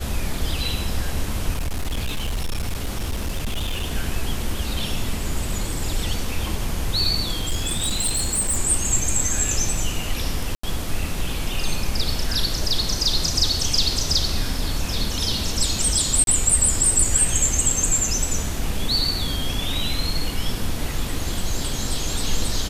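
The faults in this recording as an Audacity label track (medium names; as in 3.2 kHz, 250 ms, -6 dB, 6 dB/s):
1.530000	3.920000	clipped -20.5 dBFS
7.400000	8.580000	clipped -17.5 dBFS
10.550000	10.630000	dropout 84 ms
16.240000	16.270000	dropout 32 ms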